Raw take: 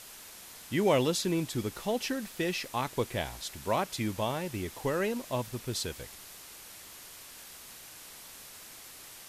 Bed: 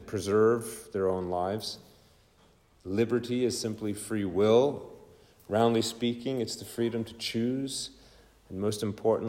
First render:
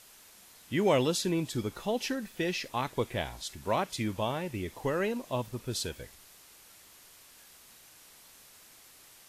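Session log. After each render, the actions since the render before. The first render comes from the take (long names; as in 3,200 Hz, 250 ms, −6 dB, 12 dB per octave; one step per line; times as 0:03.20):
noise reduction from a noise print 7 dB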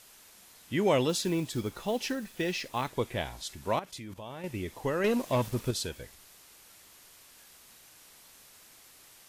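0:01.09–0:02.90: log-companded quantiser 6 bits
0:03.79–0:04.44: output level in coarse steps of 14 dB
0:05.04–0:05.71: leveller curve on the samples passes 2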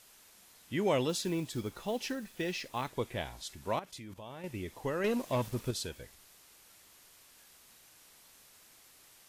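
level −4 dB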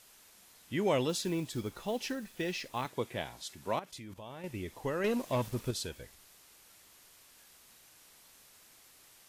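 0:02.85–0:03.91: high-pass filter 110 Hz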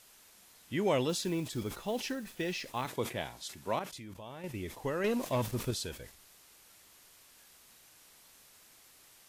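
level that may fall only so fast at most 140 dB per second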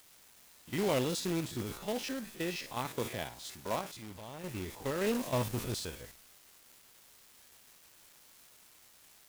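spectrum averaged block by block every 50 ms
log-companded quantiser 4 bits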